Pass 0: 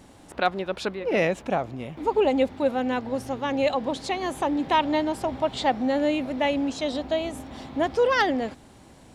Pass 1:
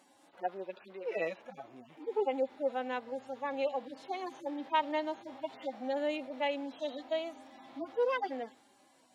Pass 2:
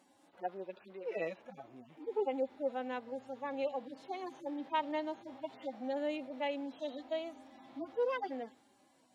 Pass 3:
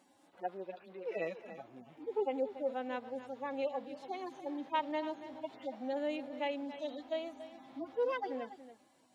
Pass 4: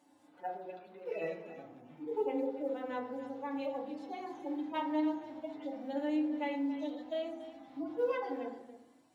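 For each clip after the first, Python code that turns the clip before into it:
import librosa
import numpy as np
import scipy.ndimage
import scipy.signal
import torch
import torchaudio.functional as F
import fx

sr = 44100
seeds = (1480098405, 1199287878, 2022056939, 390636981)

y1 = fx.hpss_only(x, sr, part='harmonic')
y1 = scipy.signal.sosfilt(scipy.signal.butter(2, 420.0, 'highpass', fs=sr, output='sos'), y1)
y1 = y1 * 10.0 ** (-7.0 / 20.0)
y2 = fx.low_shelf(y1, sr, hz=340.0, db=7.0)
y2 = y2 * 10.0 ** (-5.0 / 20.0)
y3 = y2 + 10.0 ** (-13.0 / 20.0) * np.pad(y2, (int(284 * sr / 1000.0), 0))[:len(y2)]
y4 = fx.quant_float(y3, sr, bits=6)
y4 = fx.rev_fdn(y4, sr, rt60_s=0.67, lf_ratio=1.6, hf_ratio=0.4, size_ms=20.0, drr_db=-0.5)
y4 = y4 * 10.0 ** (-4.0 / 20.0)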